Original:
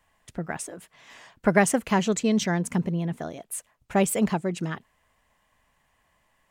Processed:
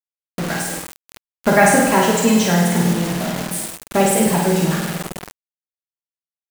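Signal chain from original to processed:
flutter between parallel walls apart 8.7 metres, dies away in 1 s
coupled-rooms reverb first 0.25 s, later 4.5 s, from −20 dB, DRR 0.5 dB
bit reduction 5 bits
level +4 dB

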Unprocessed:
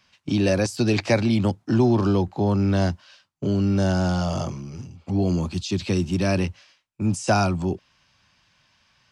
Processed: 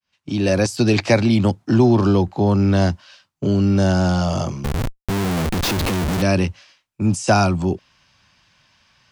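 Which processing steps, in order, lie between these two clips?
fade in at the beginning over 0.62 s
0:04.64–0:06.22: comparator with hysteresis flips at −33 dBFS
level +4.5 dB

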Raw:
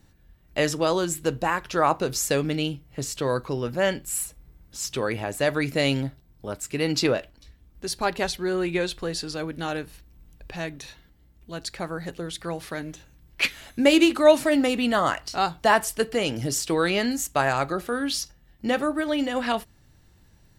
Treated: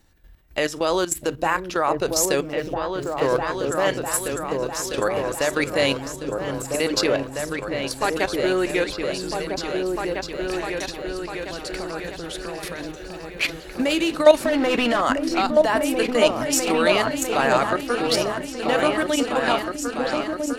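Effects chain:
0:02.42–0:03.84: running median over 15 samples
parametric band 150 Hz −9.5 dB 1.5 octaves
in parallel at −3 dB: downward compressor 16 to 1, threshold −36 dBFS, peak gain reduction 26 dB
0:14.45–0:15.01: on the sum: mid-hump overdrive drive 22 dB, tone 1,500 Hz, clips at −9.5 dBFS
output level in coarse steps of 13 dB
on a send: echo whose low-pass opens from repeat to repeat 651 ms, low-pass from 200 Hz, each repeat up 2 octaves, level 0 dB
on the sum: level +5.5 dB

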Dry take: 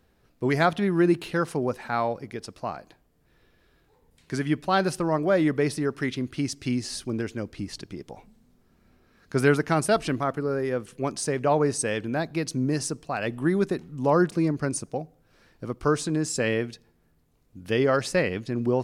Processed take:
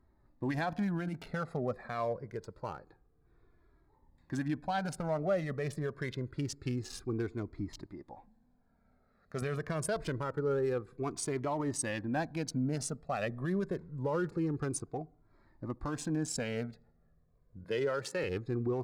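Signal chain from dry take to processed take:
adaptive Wiener filter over 15 samples
0:07.86–0:09.42: low-shelf EQ 280 Hz −7.5 dB
0:17.64–0:18.24: Bessel high-pass filter 180 Hz, order 8
brickwall limiter −19.5 dBFS, peak gain reduction 12 dB
flanger whose copies keep moving one way falling 0.26 Hz

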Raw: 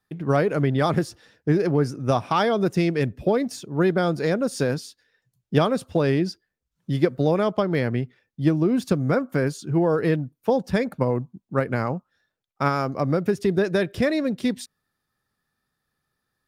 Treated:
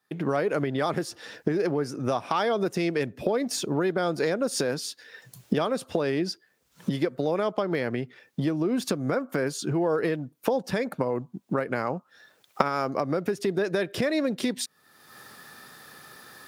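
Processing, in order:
camcorder AGC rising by 39 dB per second
high-pass filter 120 Hz
bass and treble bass −8 dB, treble 0 dB
downward compressor 1.5 to 1, threshold −34 dBFS, peak gain reduction 9 dB
level +1.5 dB

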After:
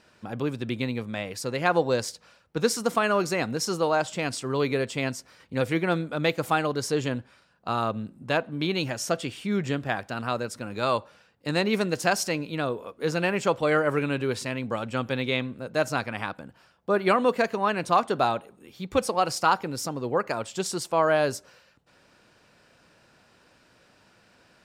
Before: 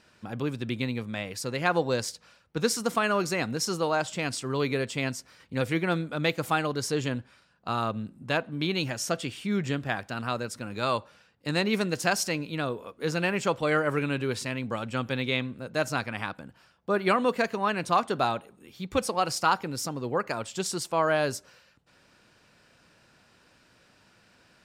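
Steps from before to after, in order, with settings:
parametric band 580 Hz +3.5 dB 2 octaves

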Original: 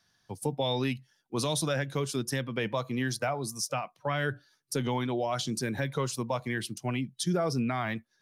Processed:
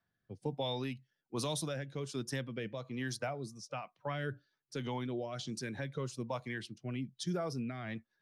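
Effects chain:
rotating-speaker cabinet horn 1.2 Hz
low-pass that shuts in the quiet parts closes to 1,900 Hz, open at −27 dBFS
level −6 dB

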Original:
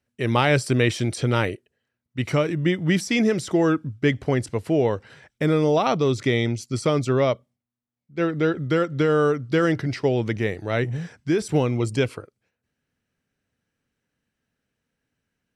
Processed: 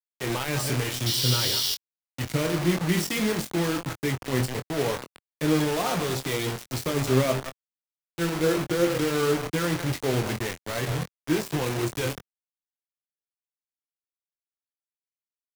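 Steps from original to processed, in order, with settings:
delay that plays each chunk backwards 123 ms, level −11.5 dB
hum removal 66.25 Hz, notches 10
0:08.46–0:09.10: dynamic equaliser 500 Hz, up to +6 dB, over −34 dBFS, Q 0.7
brickwall limiter −14 dBFS, peak gain reduction 9 dB
flanger 0.34 Hz, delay 5.5 ms, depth 2.4 ms, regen +47%
pitch vibrato 0.85 Hz 32 cents
0:01.06–0:01.75: sound drawn into the spectrogram noise 2,800–5,900 Hz −30 dBFS
bit reduction 5 bits
double-tracking delay 23 ms −8 dB
multiband upward and downward expander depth 40%

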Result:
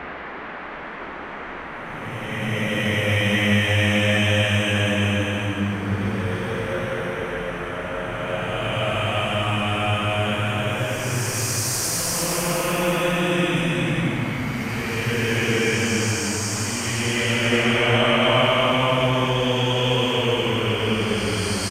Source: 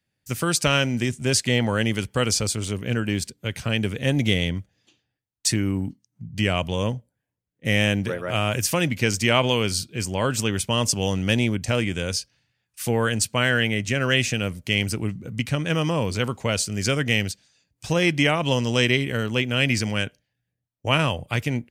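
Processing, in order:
echo with shifted repeats 375 ms, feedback 48%, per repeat −58 Hz, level −18 dB
extreme stretch with random phases 9.3×, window 0.25 s, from 0:07.38
noise in a band 160–2,000 Hz −34 dBFS

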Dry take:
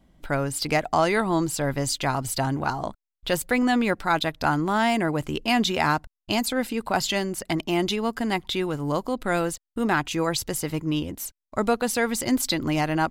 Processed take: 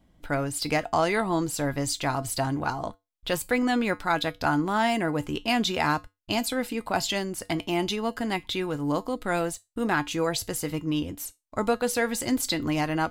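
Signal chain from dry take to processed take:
tuned comb filter 97 Hz, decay 0.2 s, harmonics odd, mix 60%
level +3.5 dB

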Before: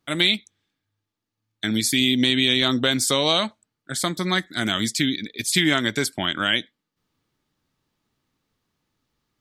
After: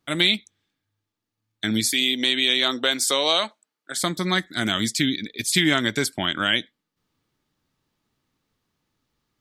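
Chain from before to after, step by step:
0:01.91–0:03.97: high-pass filter 390 Hz 12 dB per octave

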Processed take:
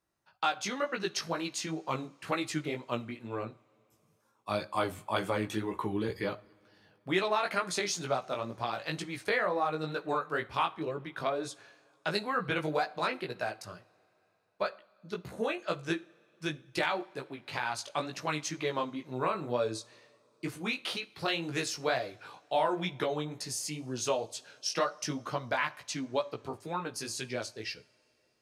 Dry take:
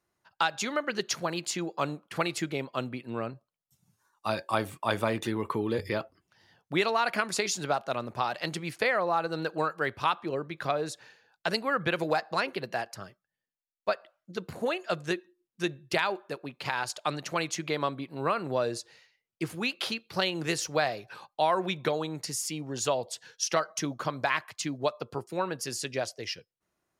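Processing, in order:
chorus effect 2.2 Hz, delay 15 ms, depth 3.7 ms
speed change −5%
coupled-rooms reverb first 0.38 s, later 3.7 s, from −21 dB, DRR 16 dB

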